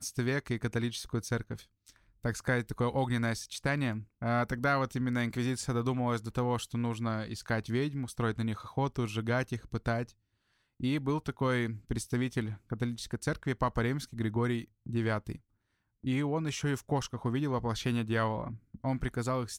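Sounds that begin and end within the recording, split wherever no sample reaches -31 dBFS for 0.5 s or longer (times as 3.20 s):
2.25–10.03 s
10.83–15.32 s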